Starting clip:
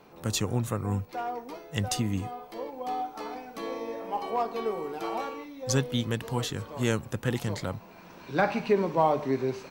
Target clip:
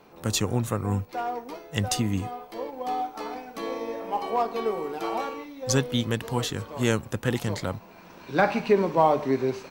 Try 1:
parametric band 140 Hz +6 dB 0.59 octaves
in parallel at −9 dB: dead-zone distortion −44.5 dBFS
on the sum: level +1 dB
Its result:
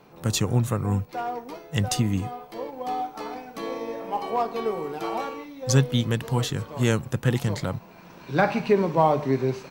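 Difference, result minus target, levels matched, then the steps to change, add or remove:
125 Hz band +3.5 dB
change: parametric band 140 Hz −2.5 dB 0.59 octaves

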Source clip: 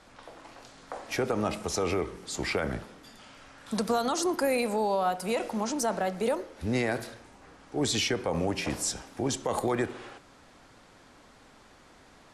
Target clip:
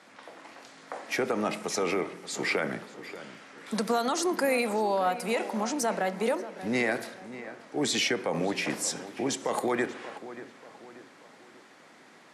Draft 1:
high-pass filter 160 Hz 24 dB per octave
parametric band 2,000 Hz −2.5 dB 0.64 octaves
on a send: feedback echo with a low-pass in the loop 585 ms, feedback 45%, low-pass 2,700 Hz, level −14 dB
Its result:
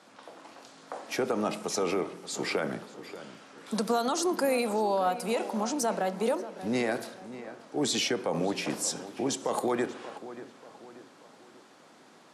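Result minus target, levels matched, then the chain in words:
2,000 Hz band −4.5 dB
high-pass filter 160 Hz 24 dB per octave
parametric band 2,000 Hz +5.5 dB 0.64 octaves
on a send: feedback echo with a low-pass in the loop 585 ms, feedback 45%, low-pass 2,700 Hz, level −14 dB

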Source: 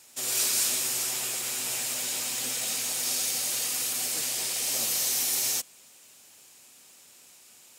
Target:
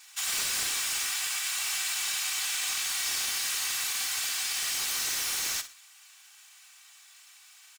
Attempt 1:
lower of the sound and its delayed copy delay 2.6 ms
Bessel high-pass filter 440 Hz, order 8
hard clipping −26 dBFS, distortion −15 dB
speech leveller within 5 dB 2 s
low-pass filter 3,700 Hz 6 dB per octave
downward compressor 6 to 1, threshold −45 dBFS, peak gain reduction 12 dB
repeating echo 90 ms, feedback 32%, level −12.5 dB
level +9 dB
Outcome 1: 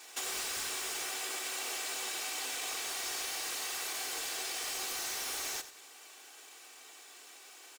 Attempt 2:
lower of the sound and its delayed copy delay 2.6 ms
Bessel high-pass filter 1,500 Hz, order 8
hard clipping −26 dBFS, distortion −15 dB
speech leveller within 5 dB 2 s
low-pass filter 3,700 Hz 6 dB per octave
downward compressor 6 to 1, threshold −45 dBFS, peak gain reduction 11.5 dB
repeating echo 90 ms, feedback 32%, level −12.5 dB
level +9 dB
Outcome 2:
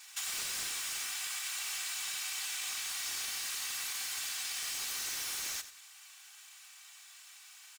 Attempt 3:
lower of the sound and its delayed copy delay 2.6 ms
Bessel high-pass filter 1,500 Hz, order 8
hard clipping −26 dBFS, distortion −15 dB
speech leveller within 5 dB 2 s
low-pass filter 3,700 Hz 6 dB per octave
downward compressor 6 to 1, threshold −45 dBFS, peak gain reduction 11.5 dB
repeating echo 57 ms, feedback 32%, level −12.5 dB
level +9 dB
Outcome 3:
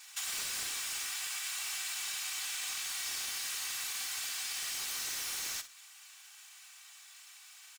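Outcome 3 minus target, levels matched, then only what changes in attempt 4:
downward compressor: peak gain reduction +7.5 dB
change: downward compressor 6 to 1, threshold −36 dBFS, peak gain reduction 4 dB

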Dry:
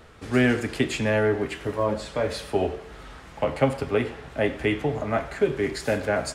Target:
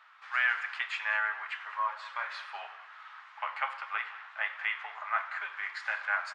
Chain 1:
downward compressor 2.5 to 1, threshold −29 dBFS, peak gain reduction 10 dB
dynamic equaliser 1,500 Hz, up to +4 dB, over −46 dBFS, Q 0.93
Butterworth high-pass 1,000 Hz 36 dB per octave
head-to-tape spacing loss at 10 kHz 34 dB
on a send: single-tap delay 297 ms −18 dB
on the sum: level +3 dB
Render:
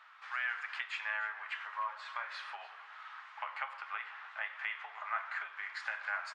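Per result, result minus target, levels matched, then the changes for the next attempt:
echo 98 ms late; downward compressor: peak gain reduction +10 dB
change: single-tap delay 199 ms −18 dB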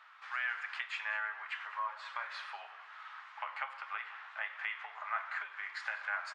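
downward compressor: peak gain reduction +10 dB
remove: downward compressor 2.5 to 1, threshold −29 dBFS, peak gain reduction 10 dB

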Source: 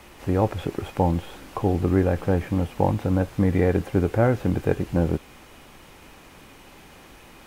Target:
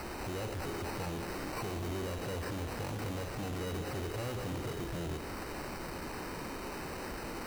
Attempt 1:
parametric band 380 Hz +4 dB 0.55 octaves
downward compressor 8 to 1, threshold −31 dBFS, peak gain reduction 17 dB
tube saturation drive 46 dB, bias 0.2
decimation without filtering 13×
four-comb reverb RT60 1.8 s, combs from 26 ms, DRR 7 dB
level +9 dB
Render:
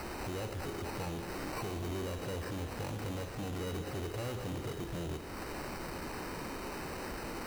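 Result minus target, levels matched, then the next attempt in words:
downward compressor: peak gain reduction +6 dB
parametric band 380 Hz +4 dB 0.55 octaves
downward compressor 8 to 1, threshold −24 dBFS, peak gain reduction 11 dB
tube saturation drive 46 dB, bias 0.2
decimation without filtering 13×
four-comb reverb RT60 1.8 s, combs from 26 ms, DRR 7 dB
level +9 dB

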